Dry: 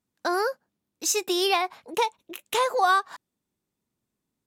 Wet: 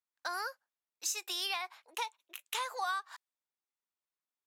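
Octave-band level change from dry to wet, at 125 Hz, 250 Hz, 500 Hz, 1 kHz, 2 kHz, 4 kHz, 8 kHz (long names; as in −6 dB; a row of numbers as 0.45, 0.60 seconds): can't be measured, −26.5 dB, −21.5 dB, −13.5 dB, −10.0 dB, −8.0 dB, −9.5 dB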